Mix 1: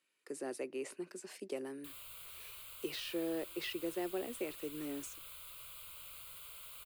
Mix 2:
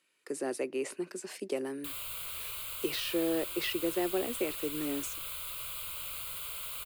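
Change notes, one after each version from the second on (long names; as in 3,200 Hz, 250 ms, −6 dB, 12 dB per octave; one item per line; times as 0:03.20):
speech +7.0 dB
background +11.0 dB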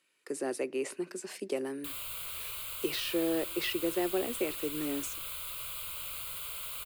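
speech: send +6.0 dB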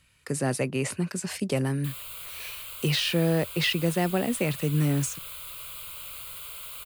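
speech: remove four-pole ladder high-pass 300 Hz, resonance 55%
reverb: off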